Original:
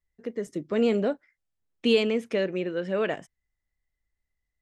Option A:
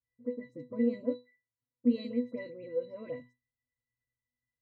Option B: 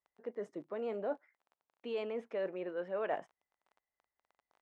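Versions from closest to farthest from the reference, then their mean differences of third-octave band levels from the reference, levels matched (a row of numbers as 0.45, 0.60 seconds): B, A; 5.0, 9.5 decibels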